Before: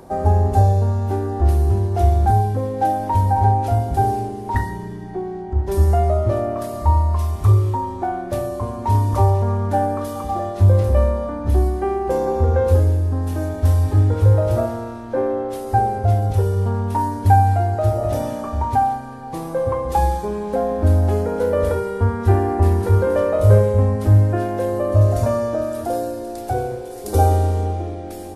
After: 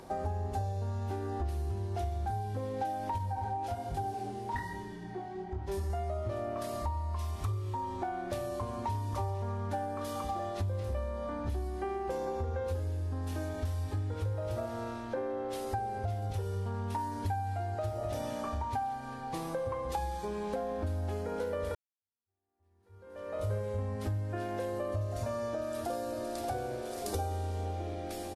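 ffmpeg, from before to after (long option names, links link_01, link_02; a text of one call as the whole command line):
ffmpeg -i in.wav -filter_complex "[0:a]asettb=1/sr,asplit=3[link_01][link_02][link_03];[link_01]atrim=end=3.184[link_04];[link_02]atrim=start=3.18:end=5.9,asetpts=PTS-STARTPTS,afade=type=in:duration=0.004:curve=qsin,afade=type=out:start_time=2.716:duration=0.004:curve=qsin,flanger=delay=20:depth=5.7:speed=1.2[link_05];[link_03]atrim=start=5.896[link_06];[link_04][link_05]acrossfade=duration=0.004:curve1=hsin:curve2=qsin[link_07];[link_07][link_06]acrossfade=duration=0.004:curve1=qsin:curve2=hsin,asplit=2[link_08][link_09];[link_09]afade=type=in:start_time=25.32:duration=0.01,afade=type=out:start_time=26.48:duration=0.01,aecho=0:1:580|1160|1740|2320|2900|3480:0.354813|0.195147|0.107331|0.0590321|0.0324676|0.0178572[link_10];[link_08][link_10]amix=inputs=2:normalize=0,asplit=2[link_11][link_12];[link_11]atrim=end=21.75,asetpts=PTS-STARTPTS,afade=type=out:start_time=21.746:duration=0.004:curve=hsin[link_13];[link_12]atrim=start=21.75,asetpts=PTS-STARTPTS,afade=type=in:duration=1.79:curve=exp[link_14];[link_13][link_14]concat=n=2:v=0:a=1,equalizer=frequency=3400:width_type=o:width=2.7:gain=8.5,acompressor=threshold=-24dB:ratio=5,volume=-8.5dB" out.wav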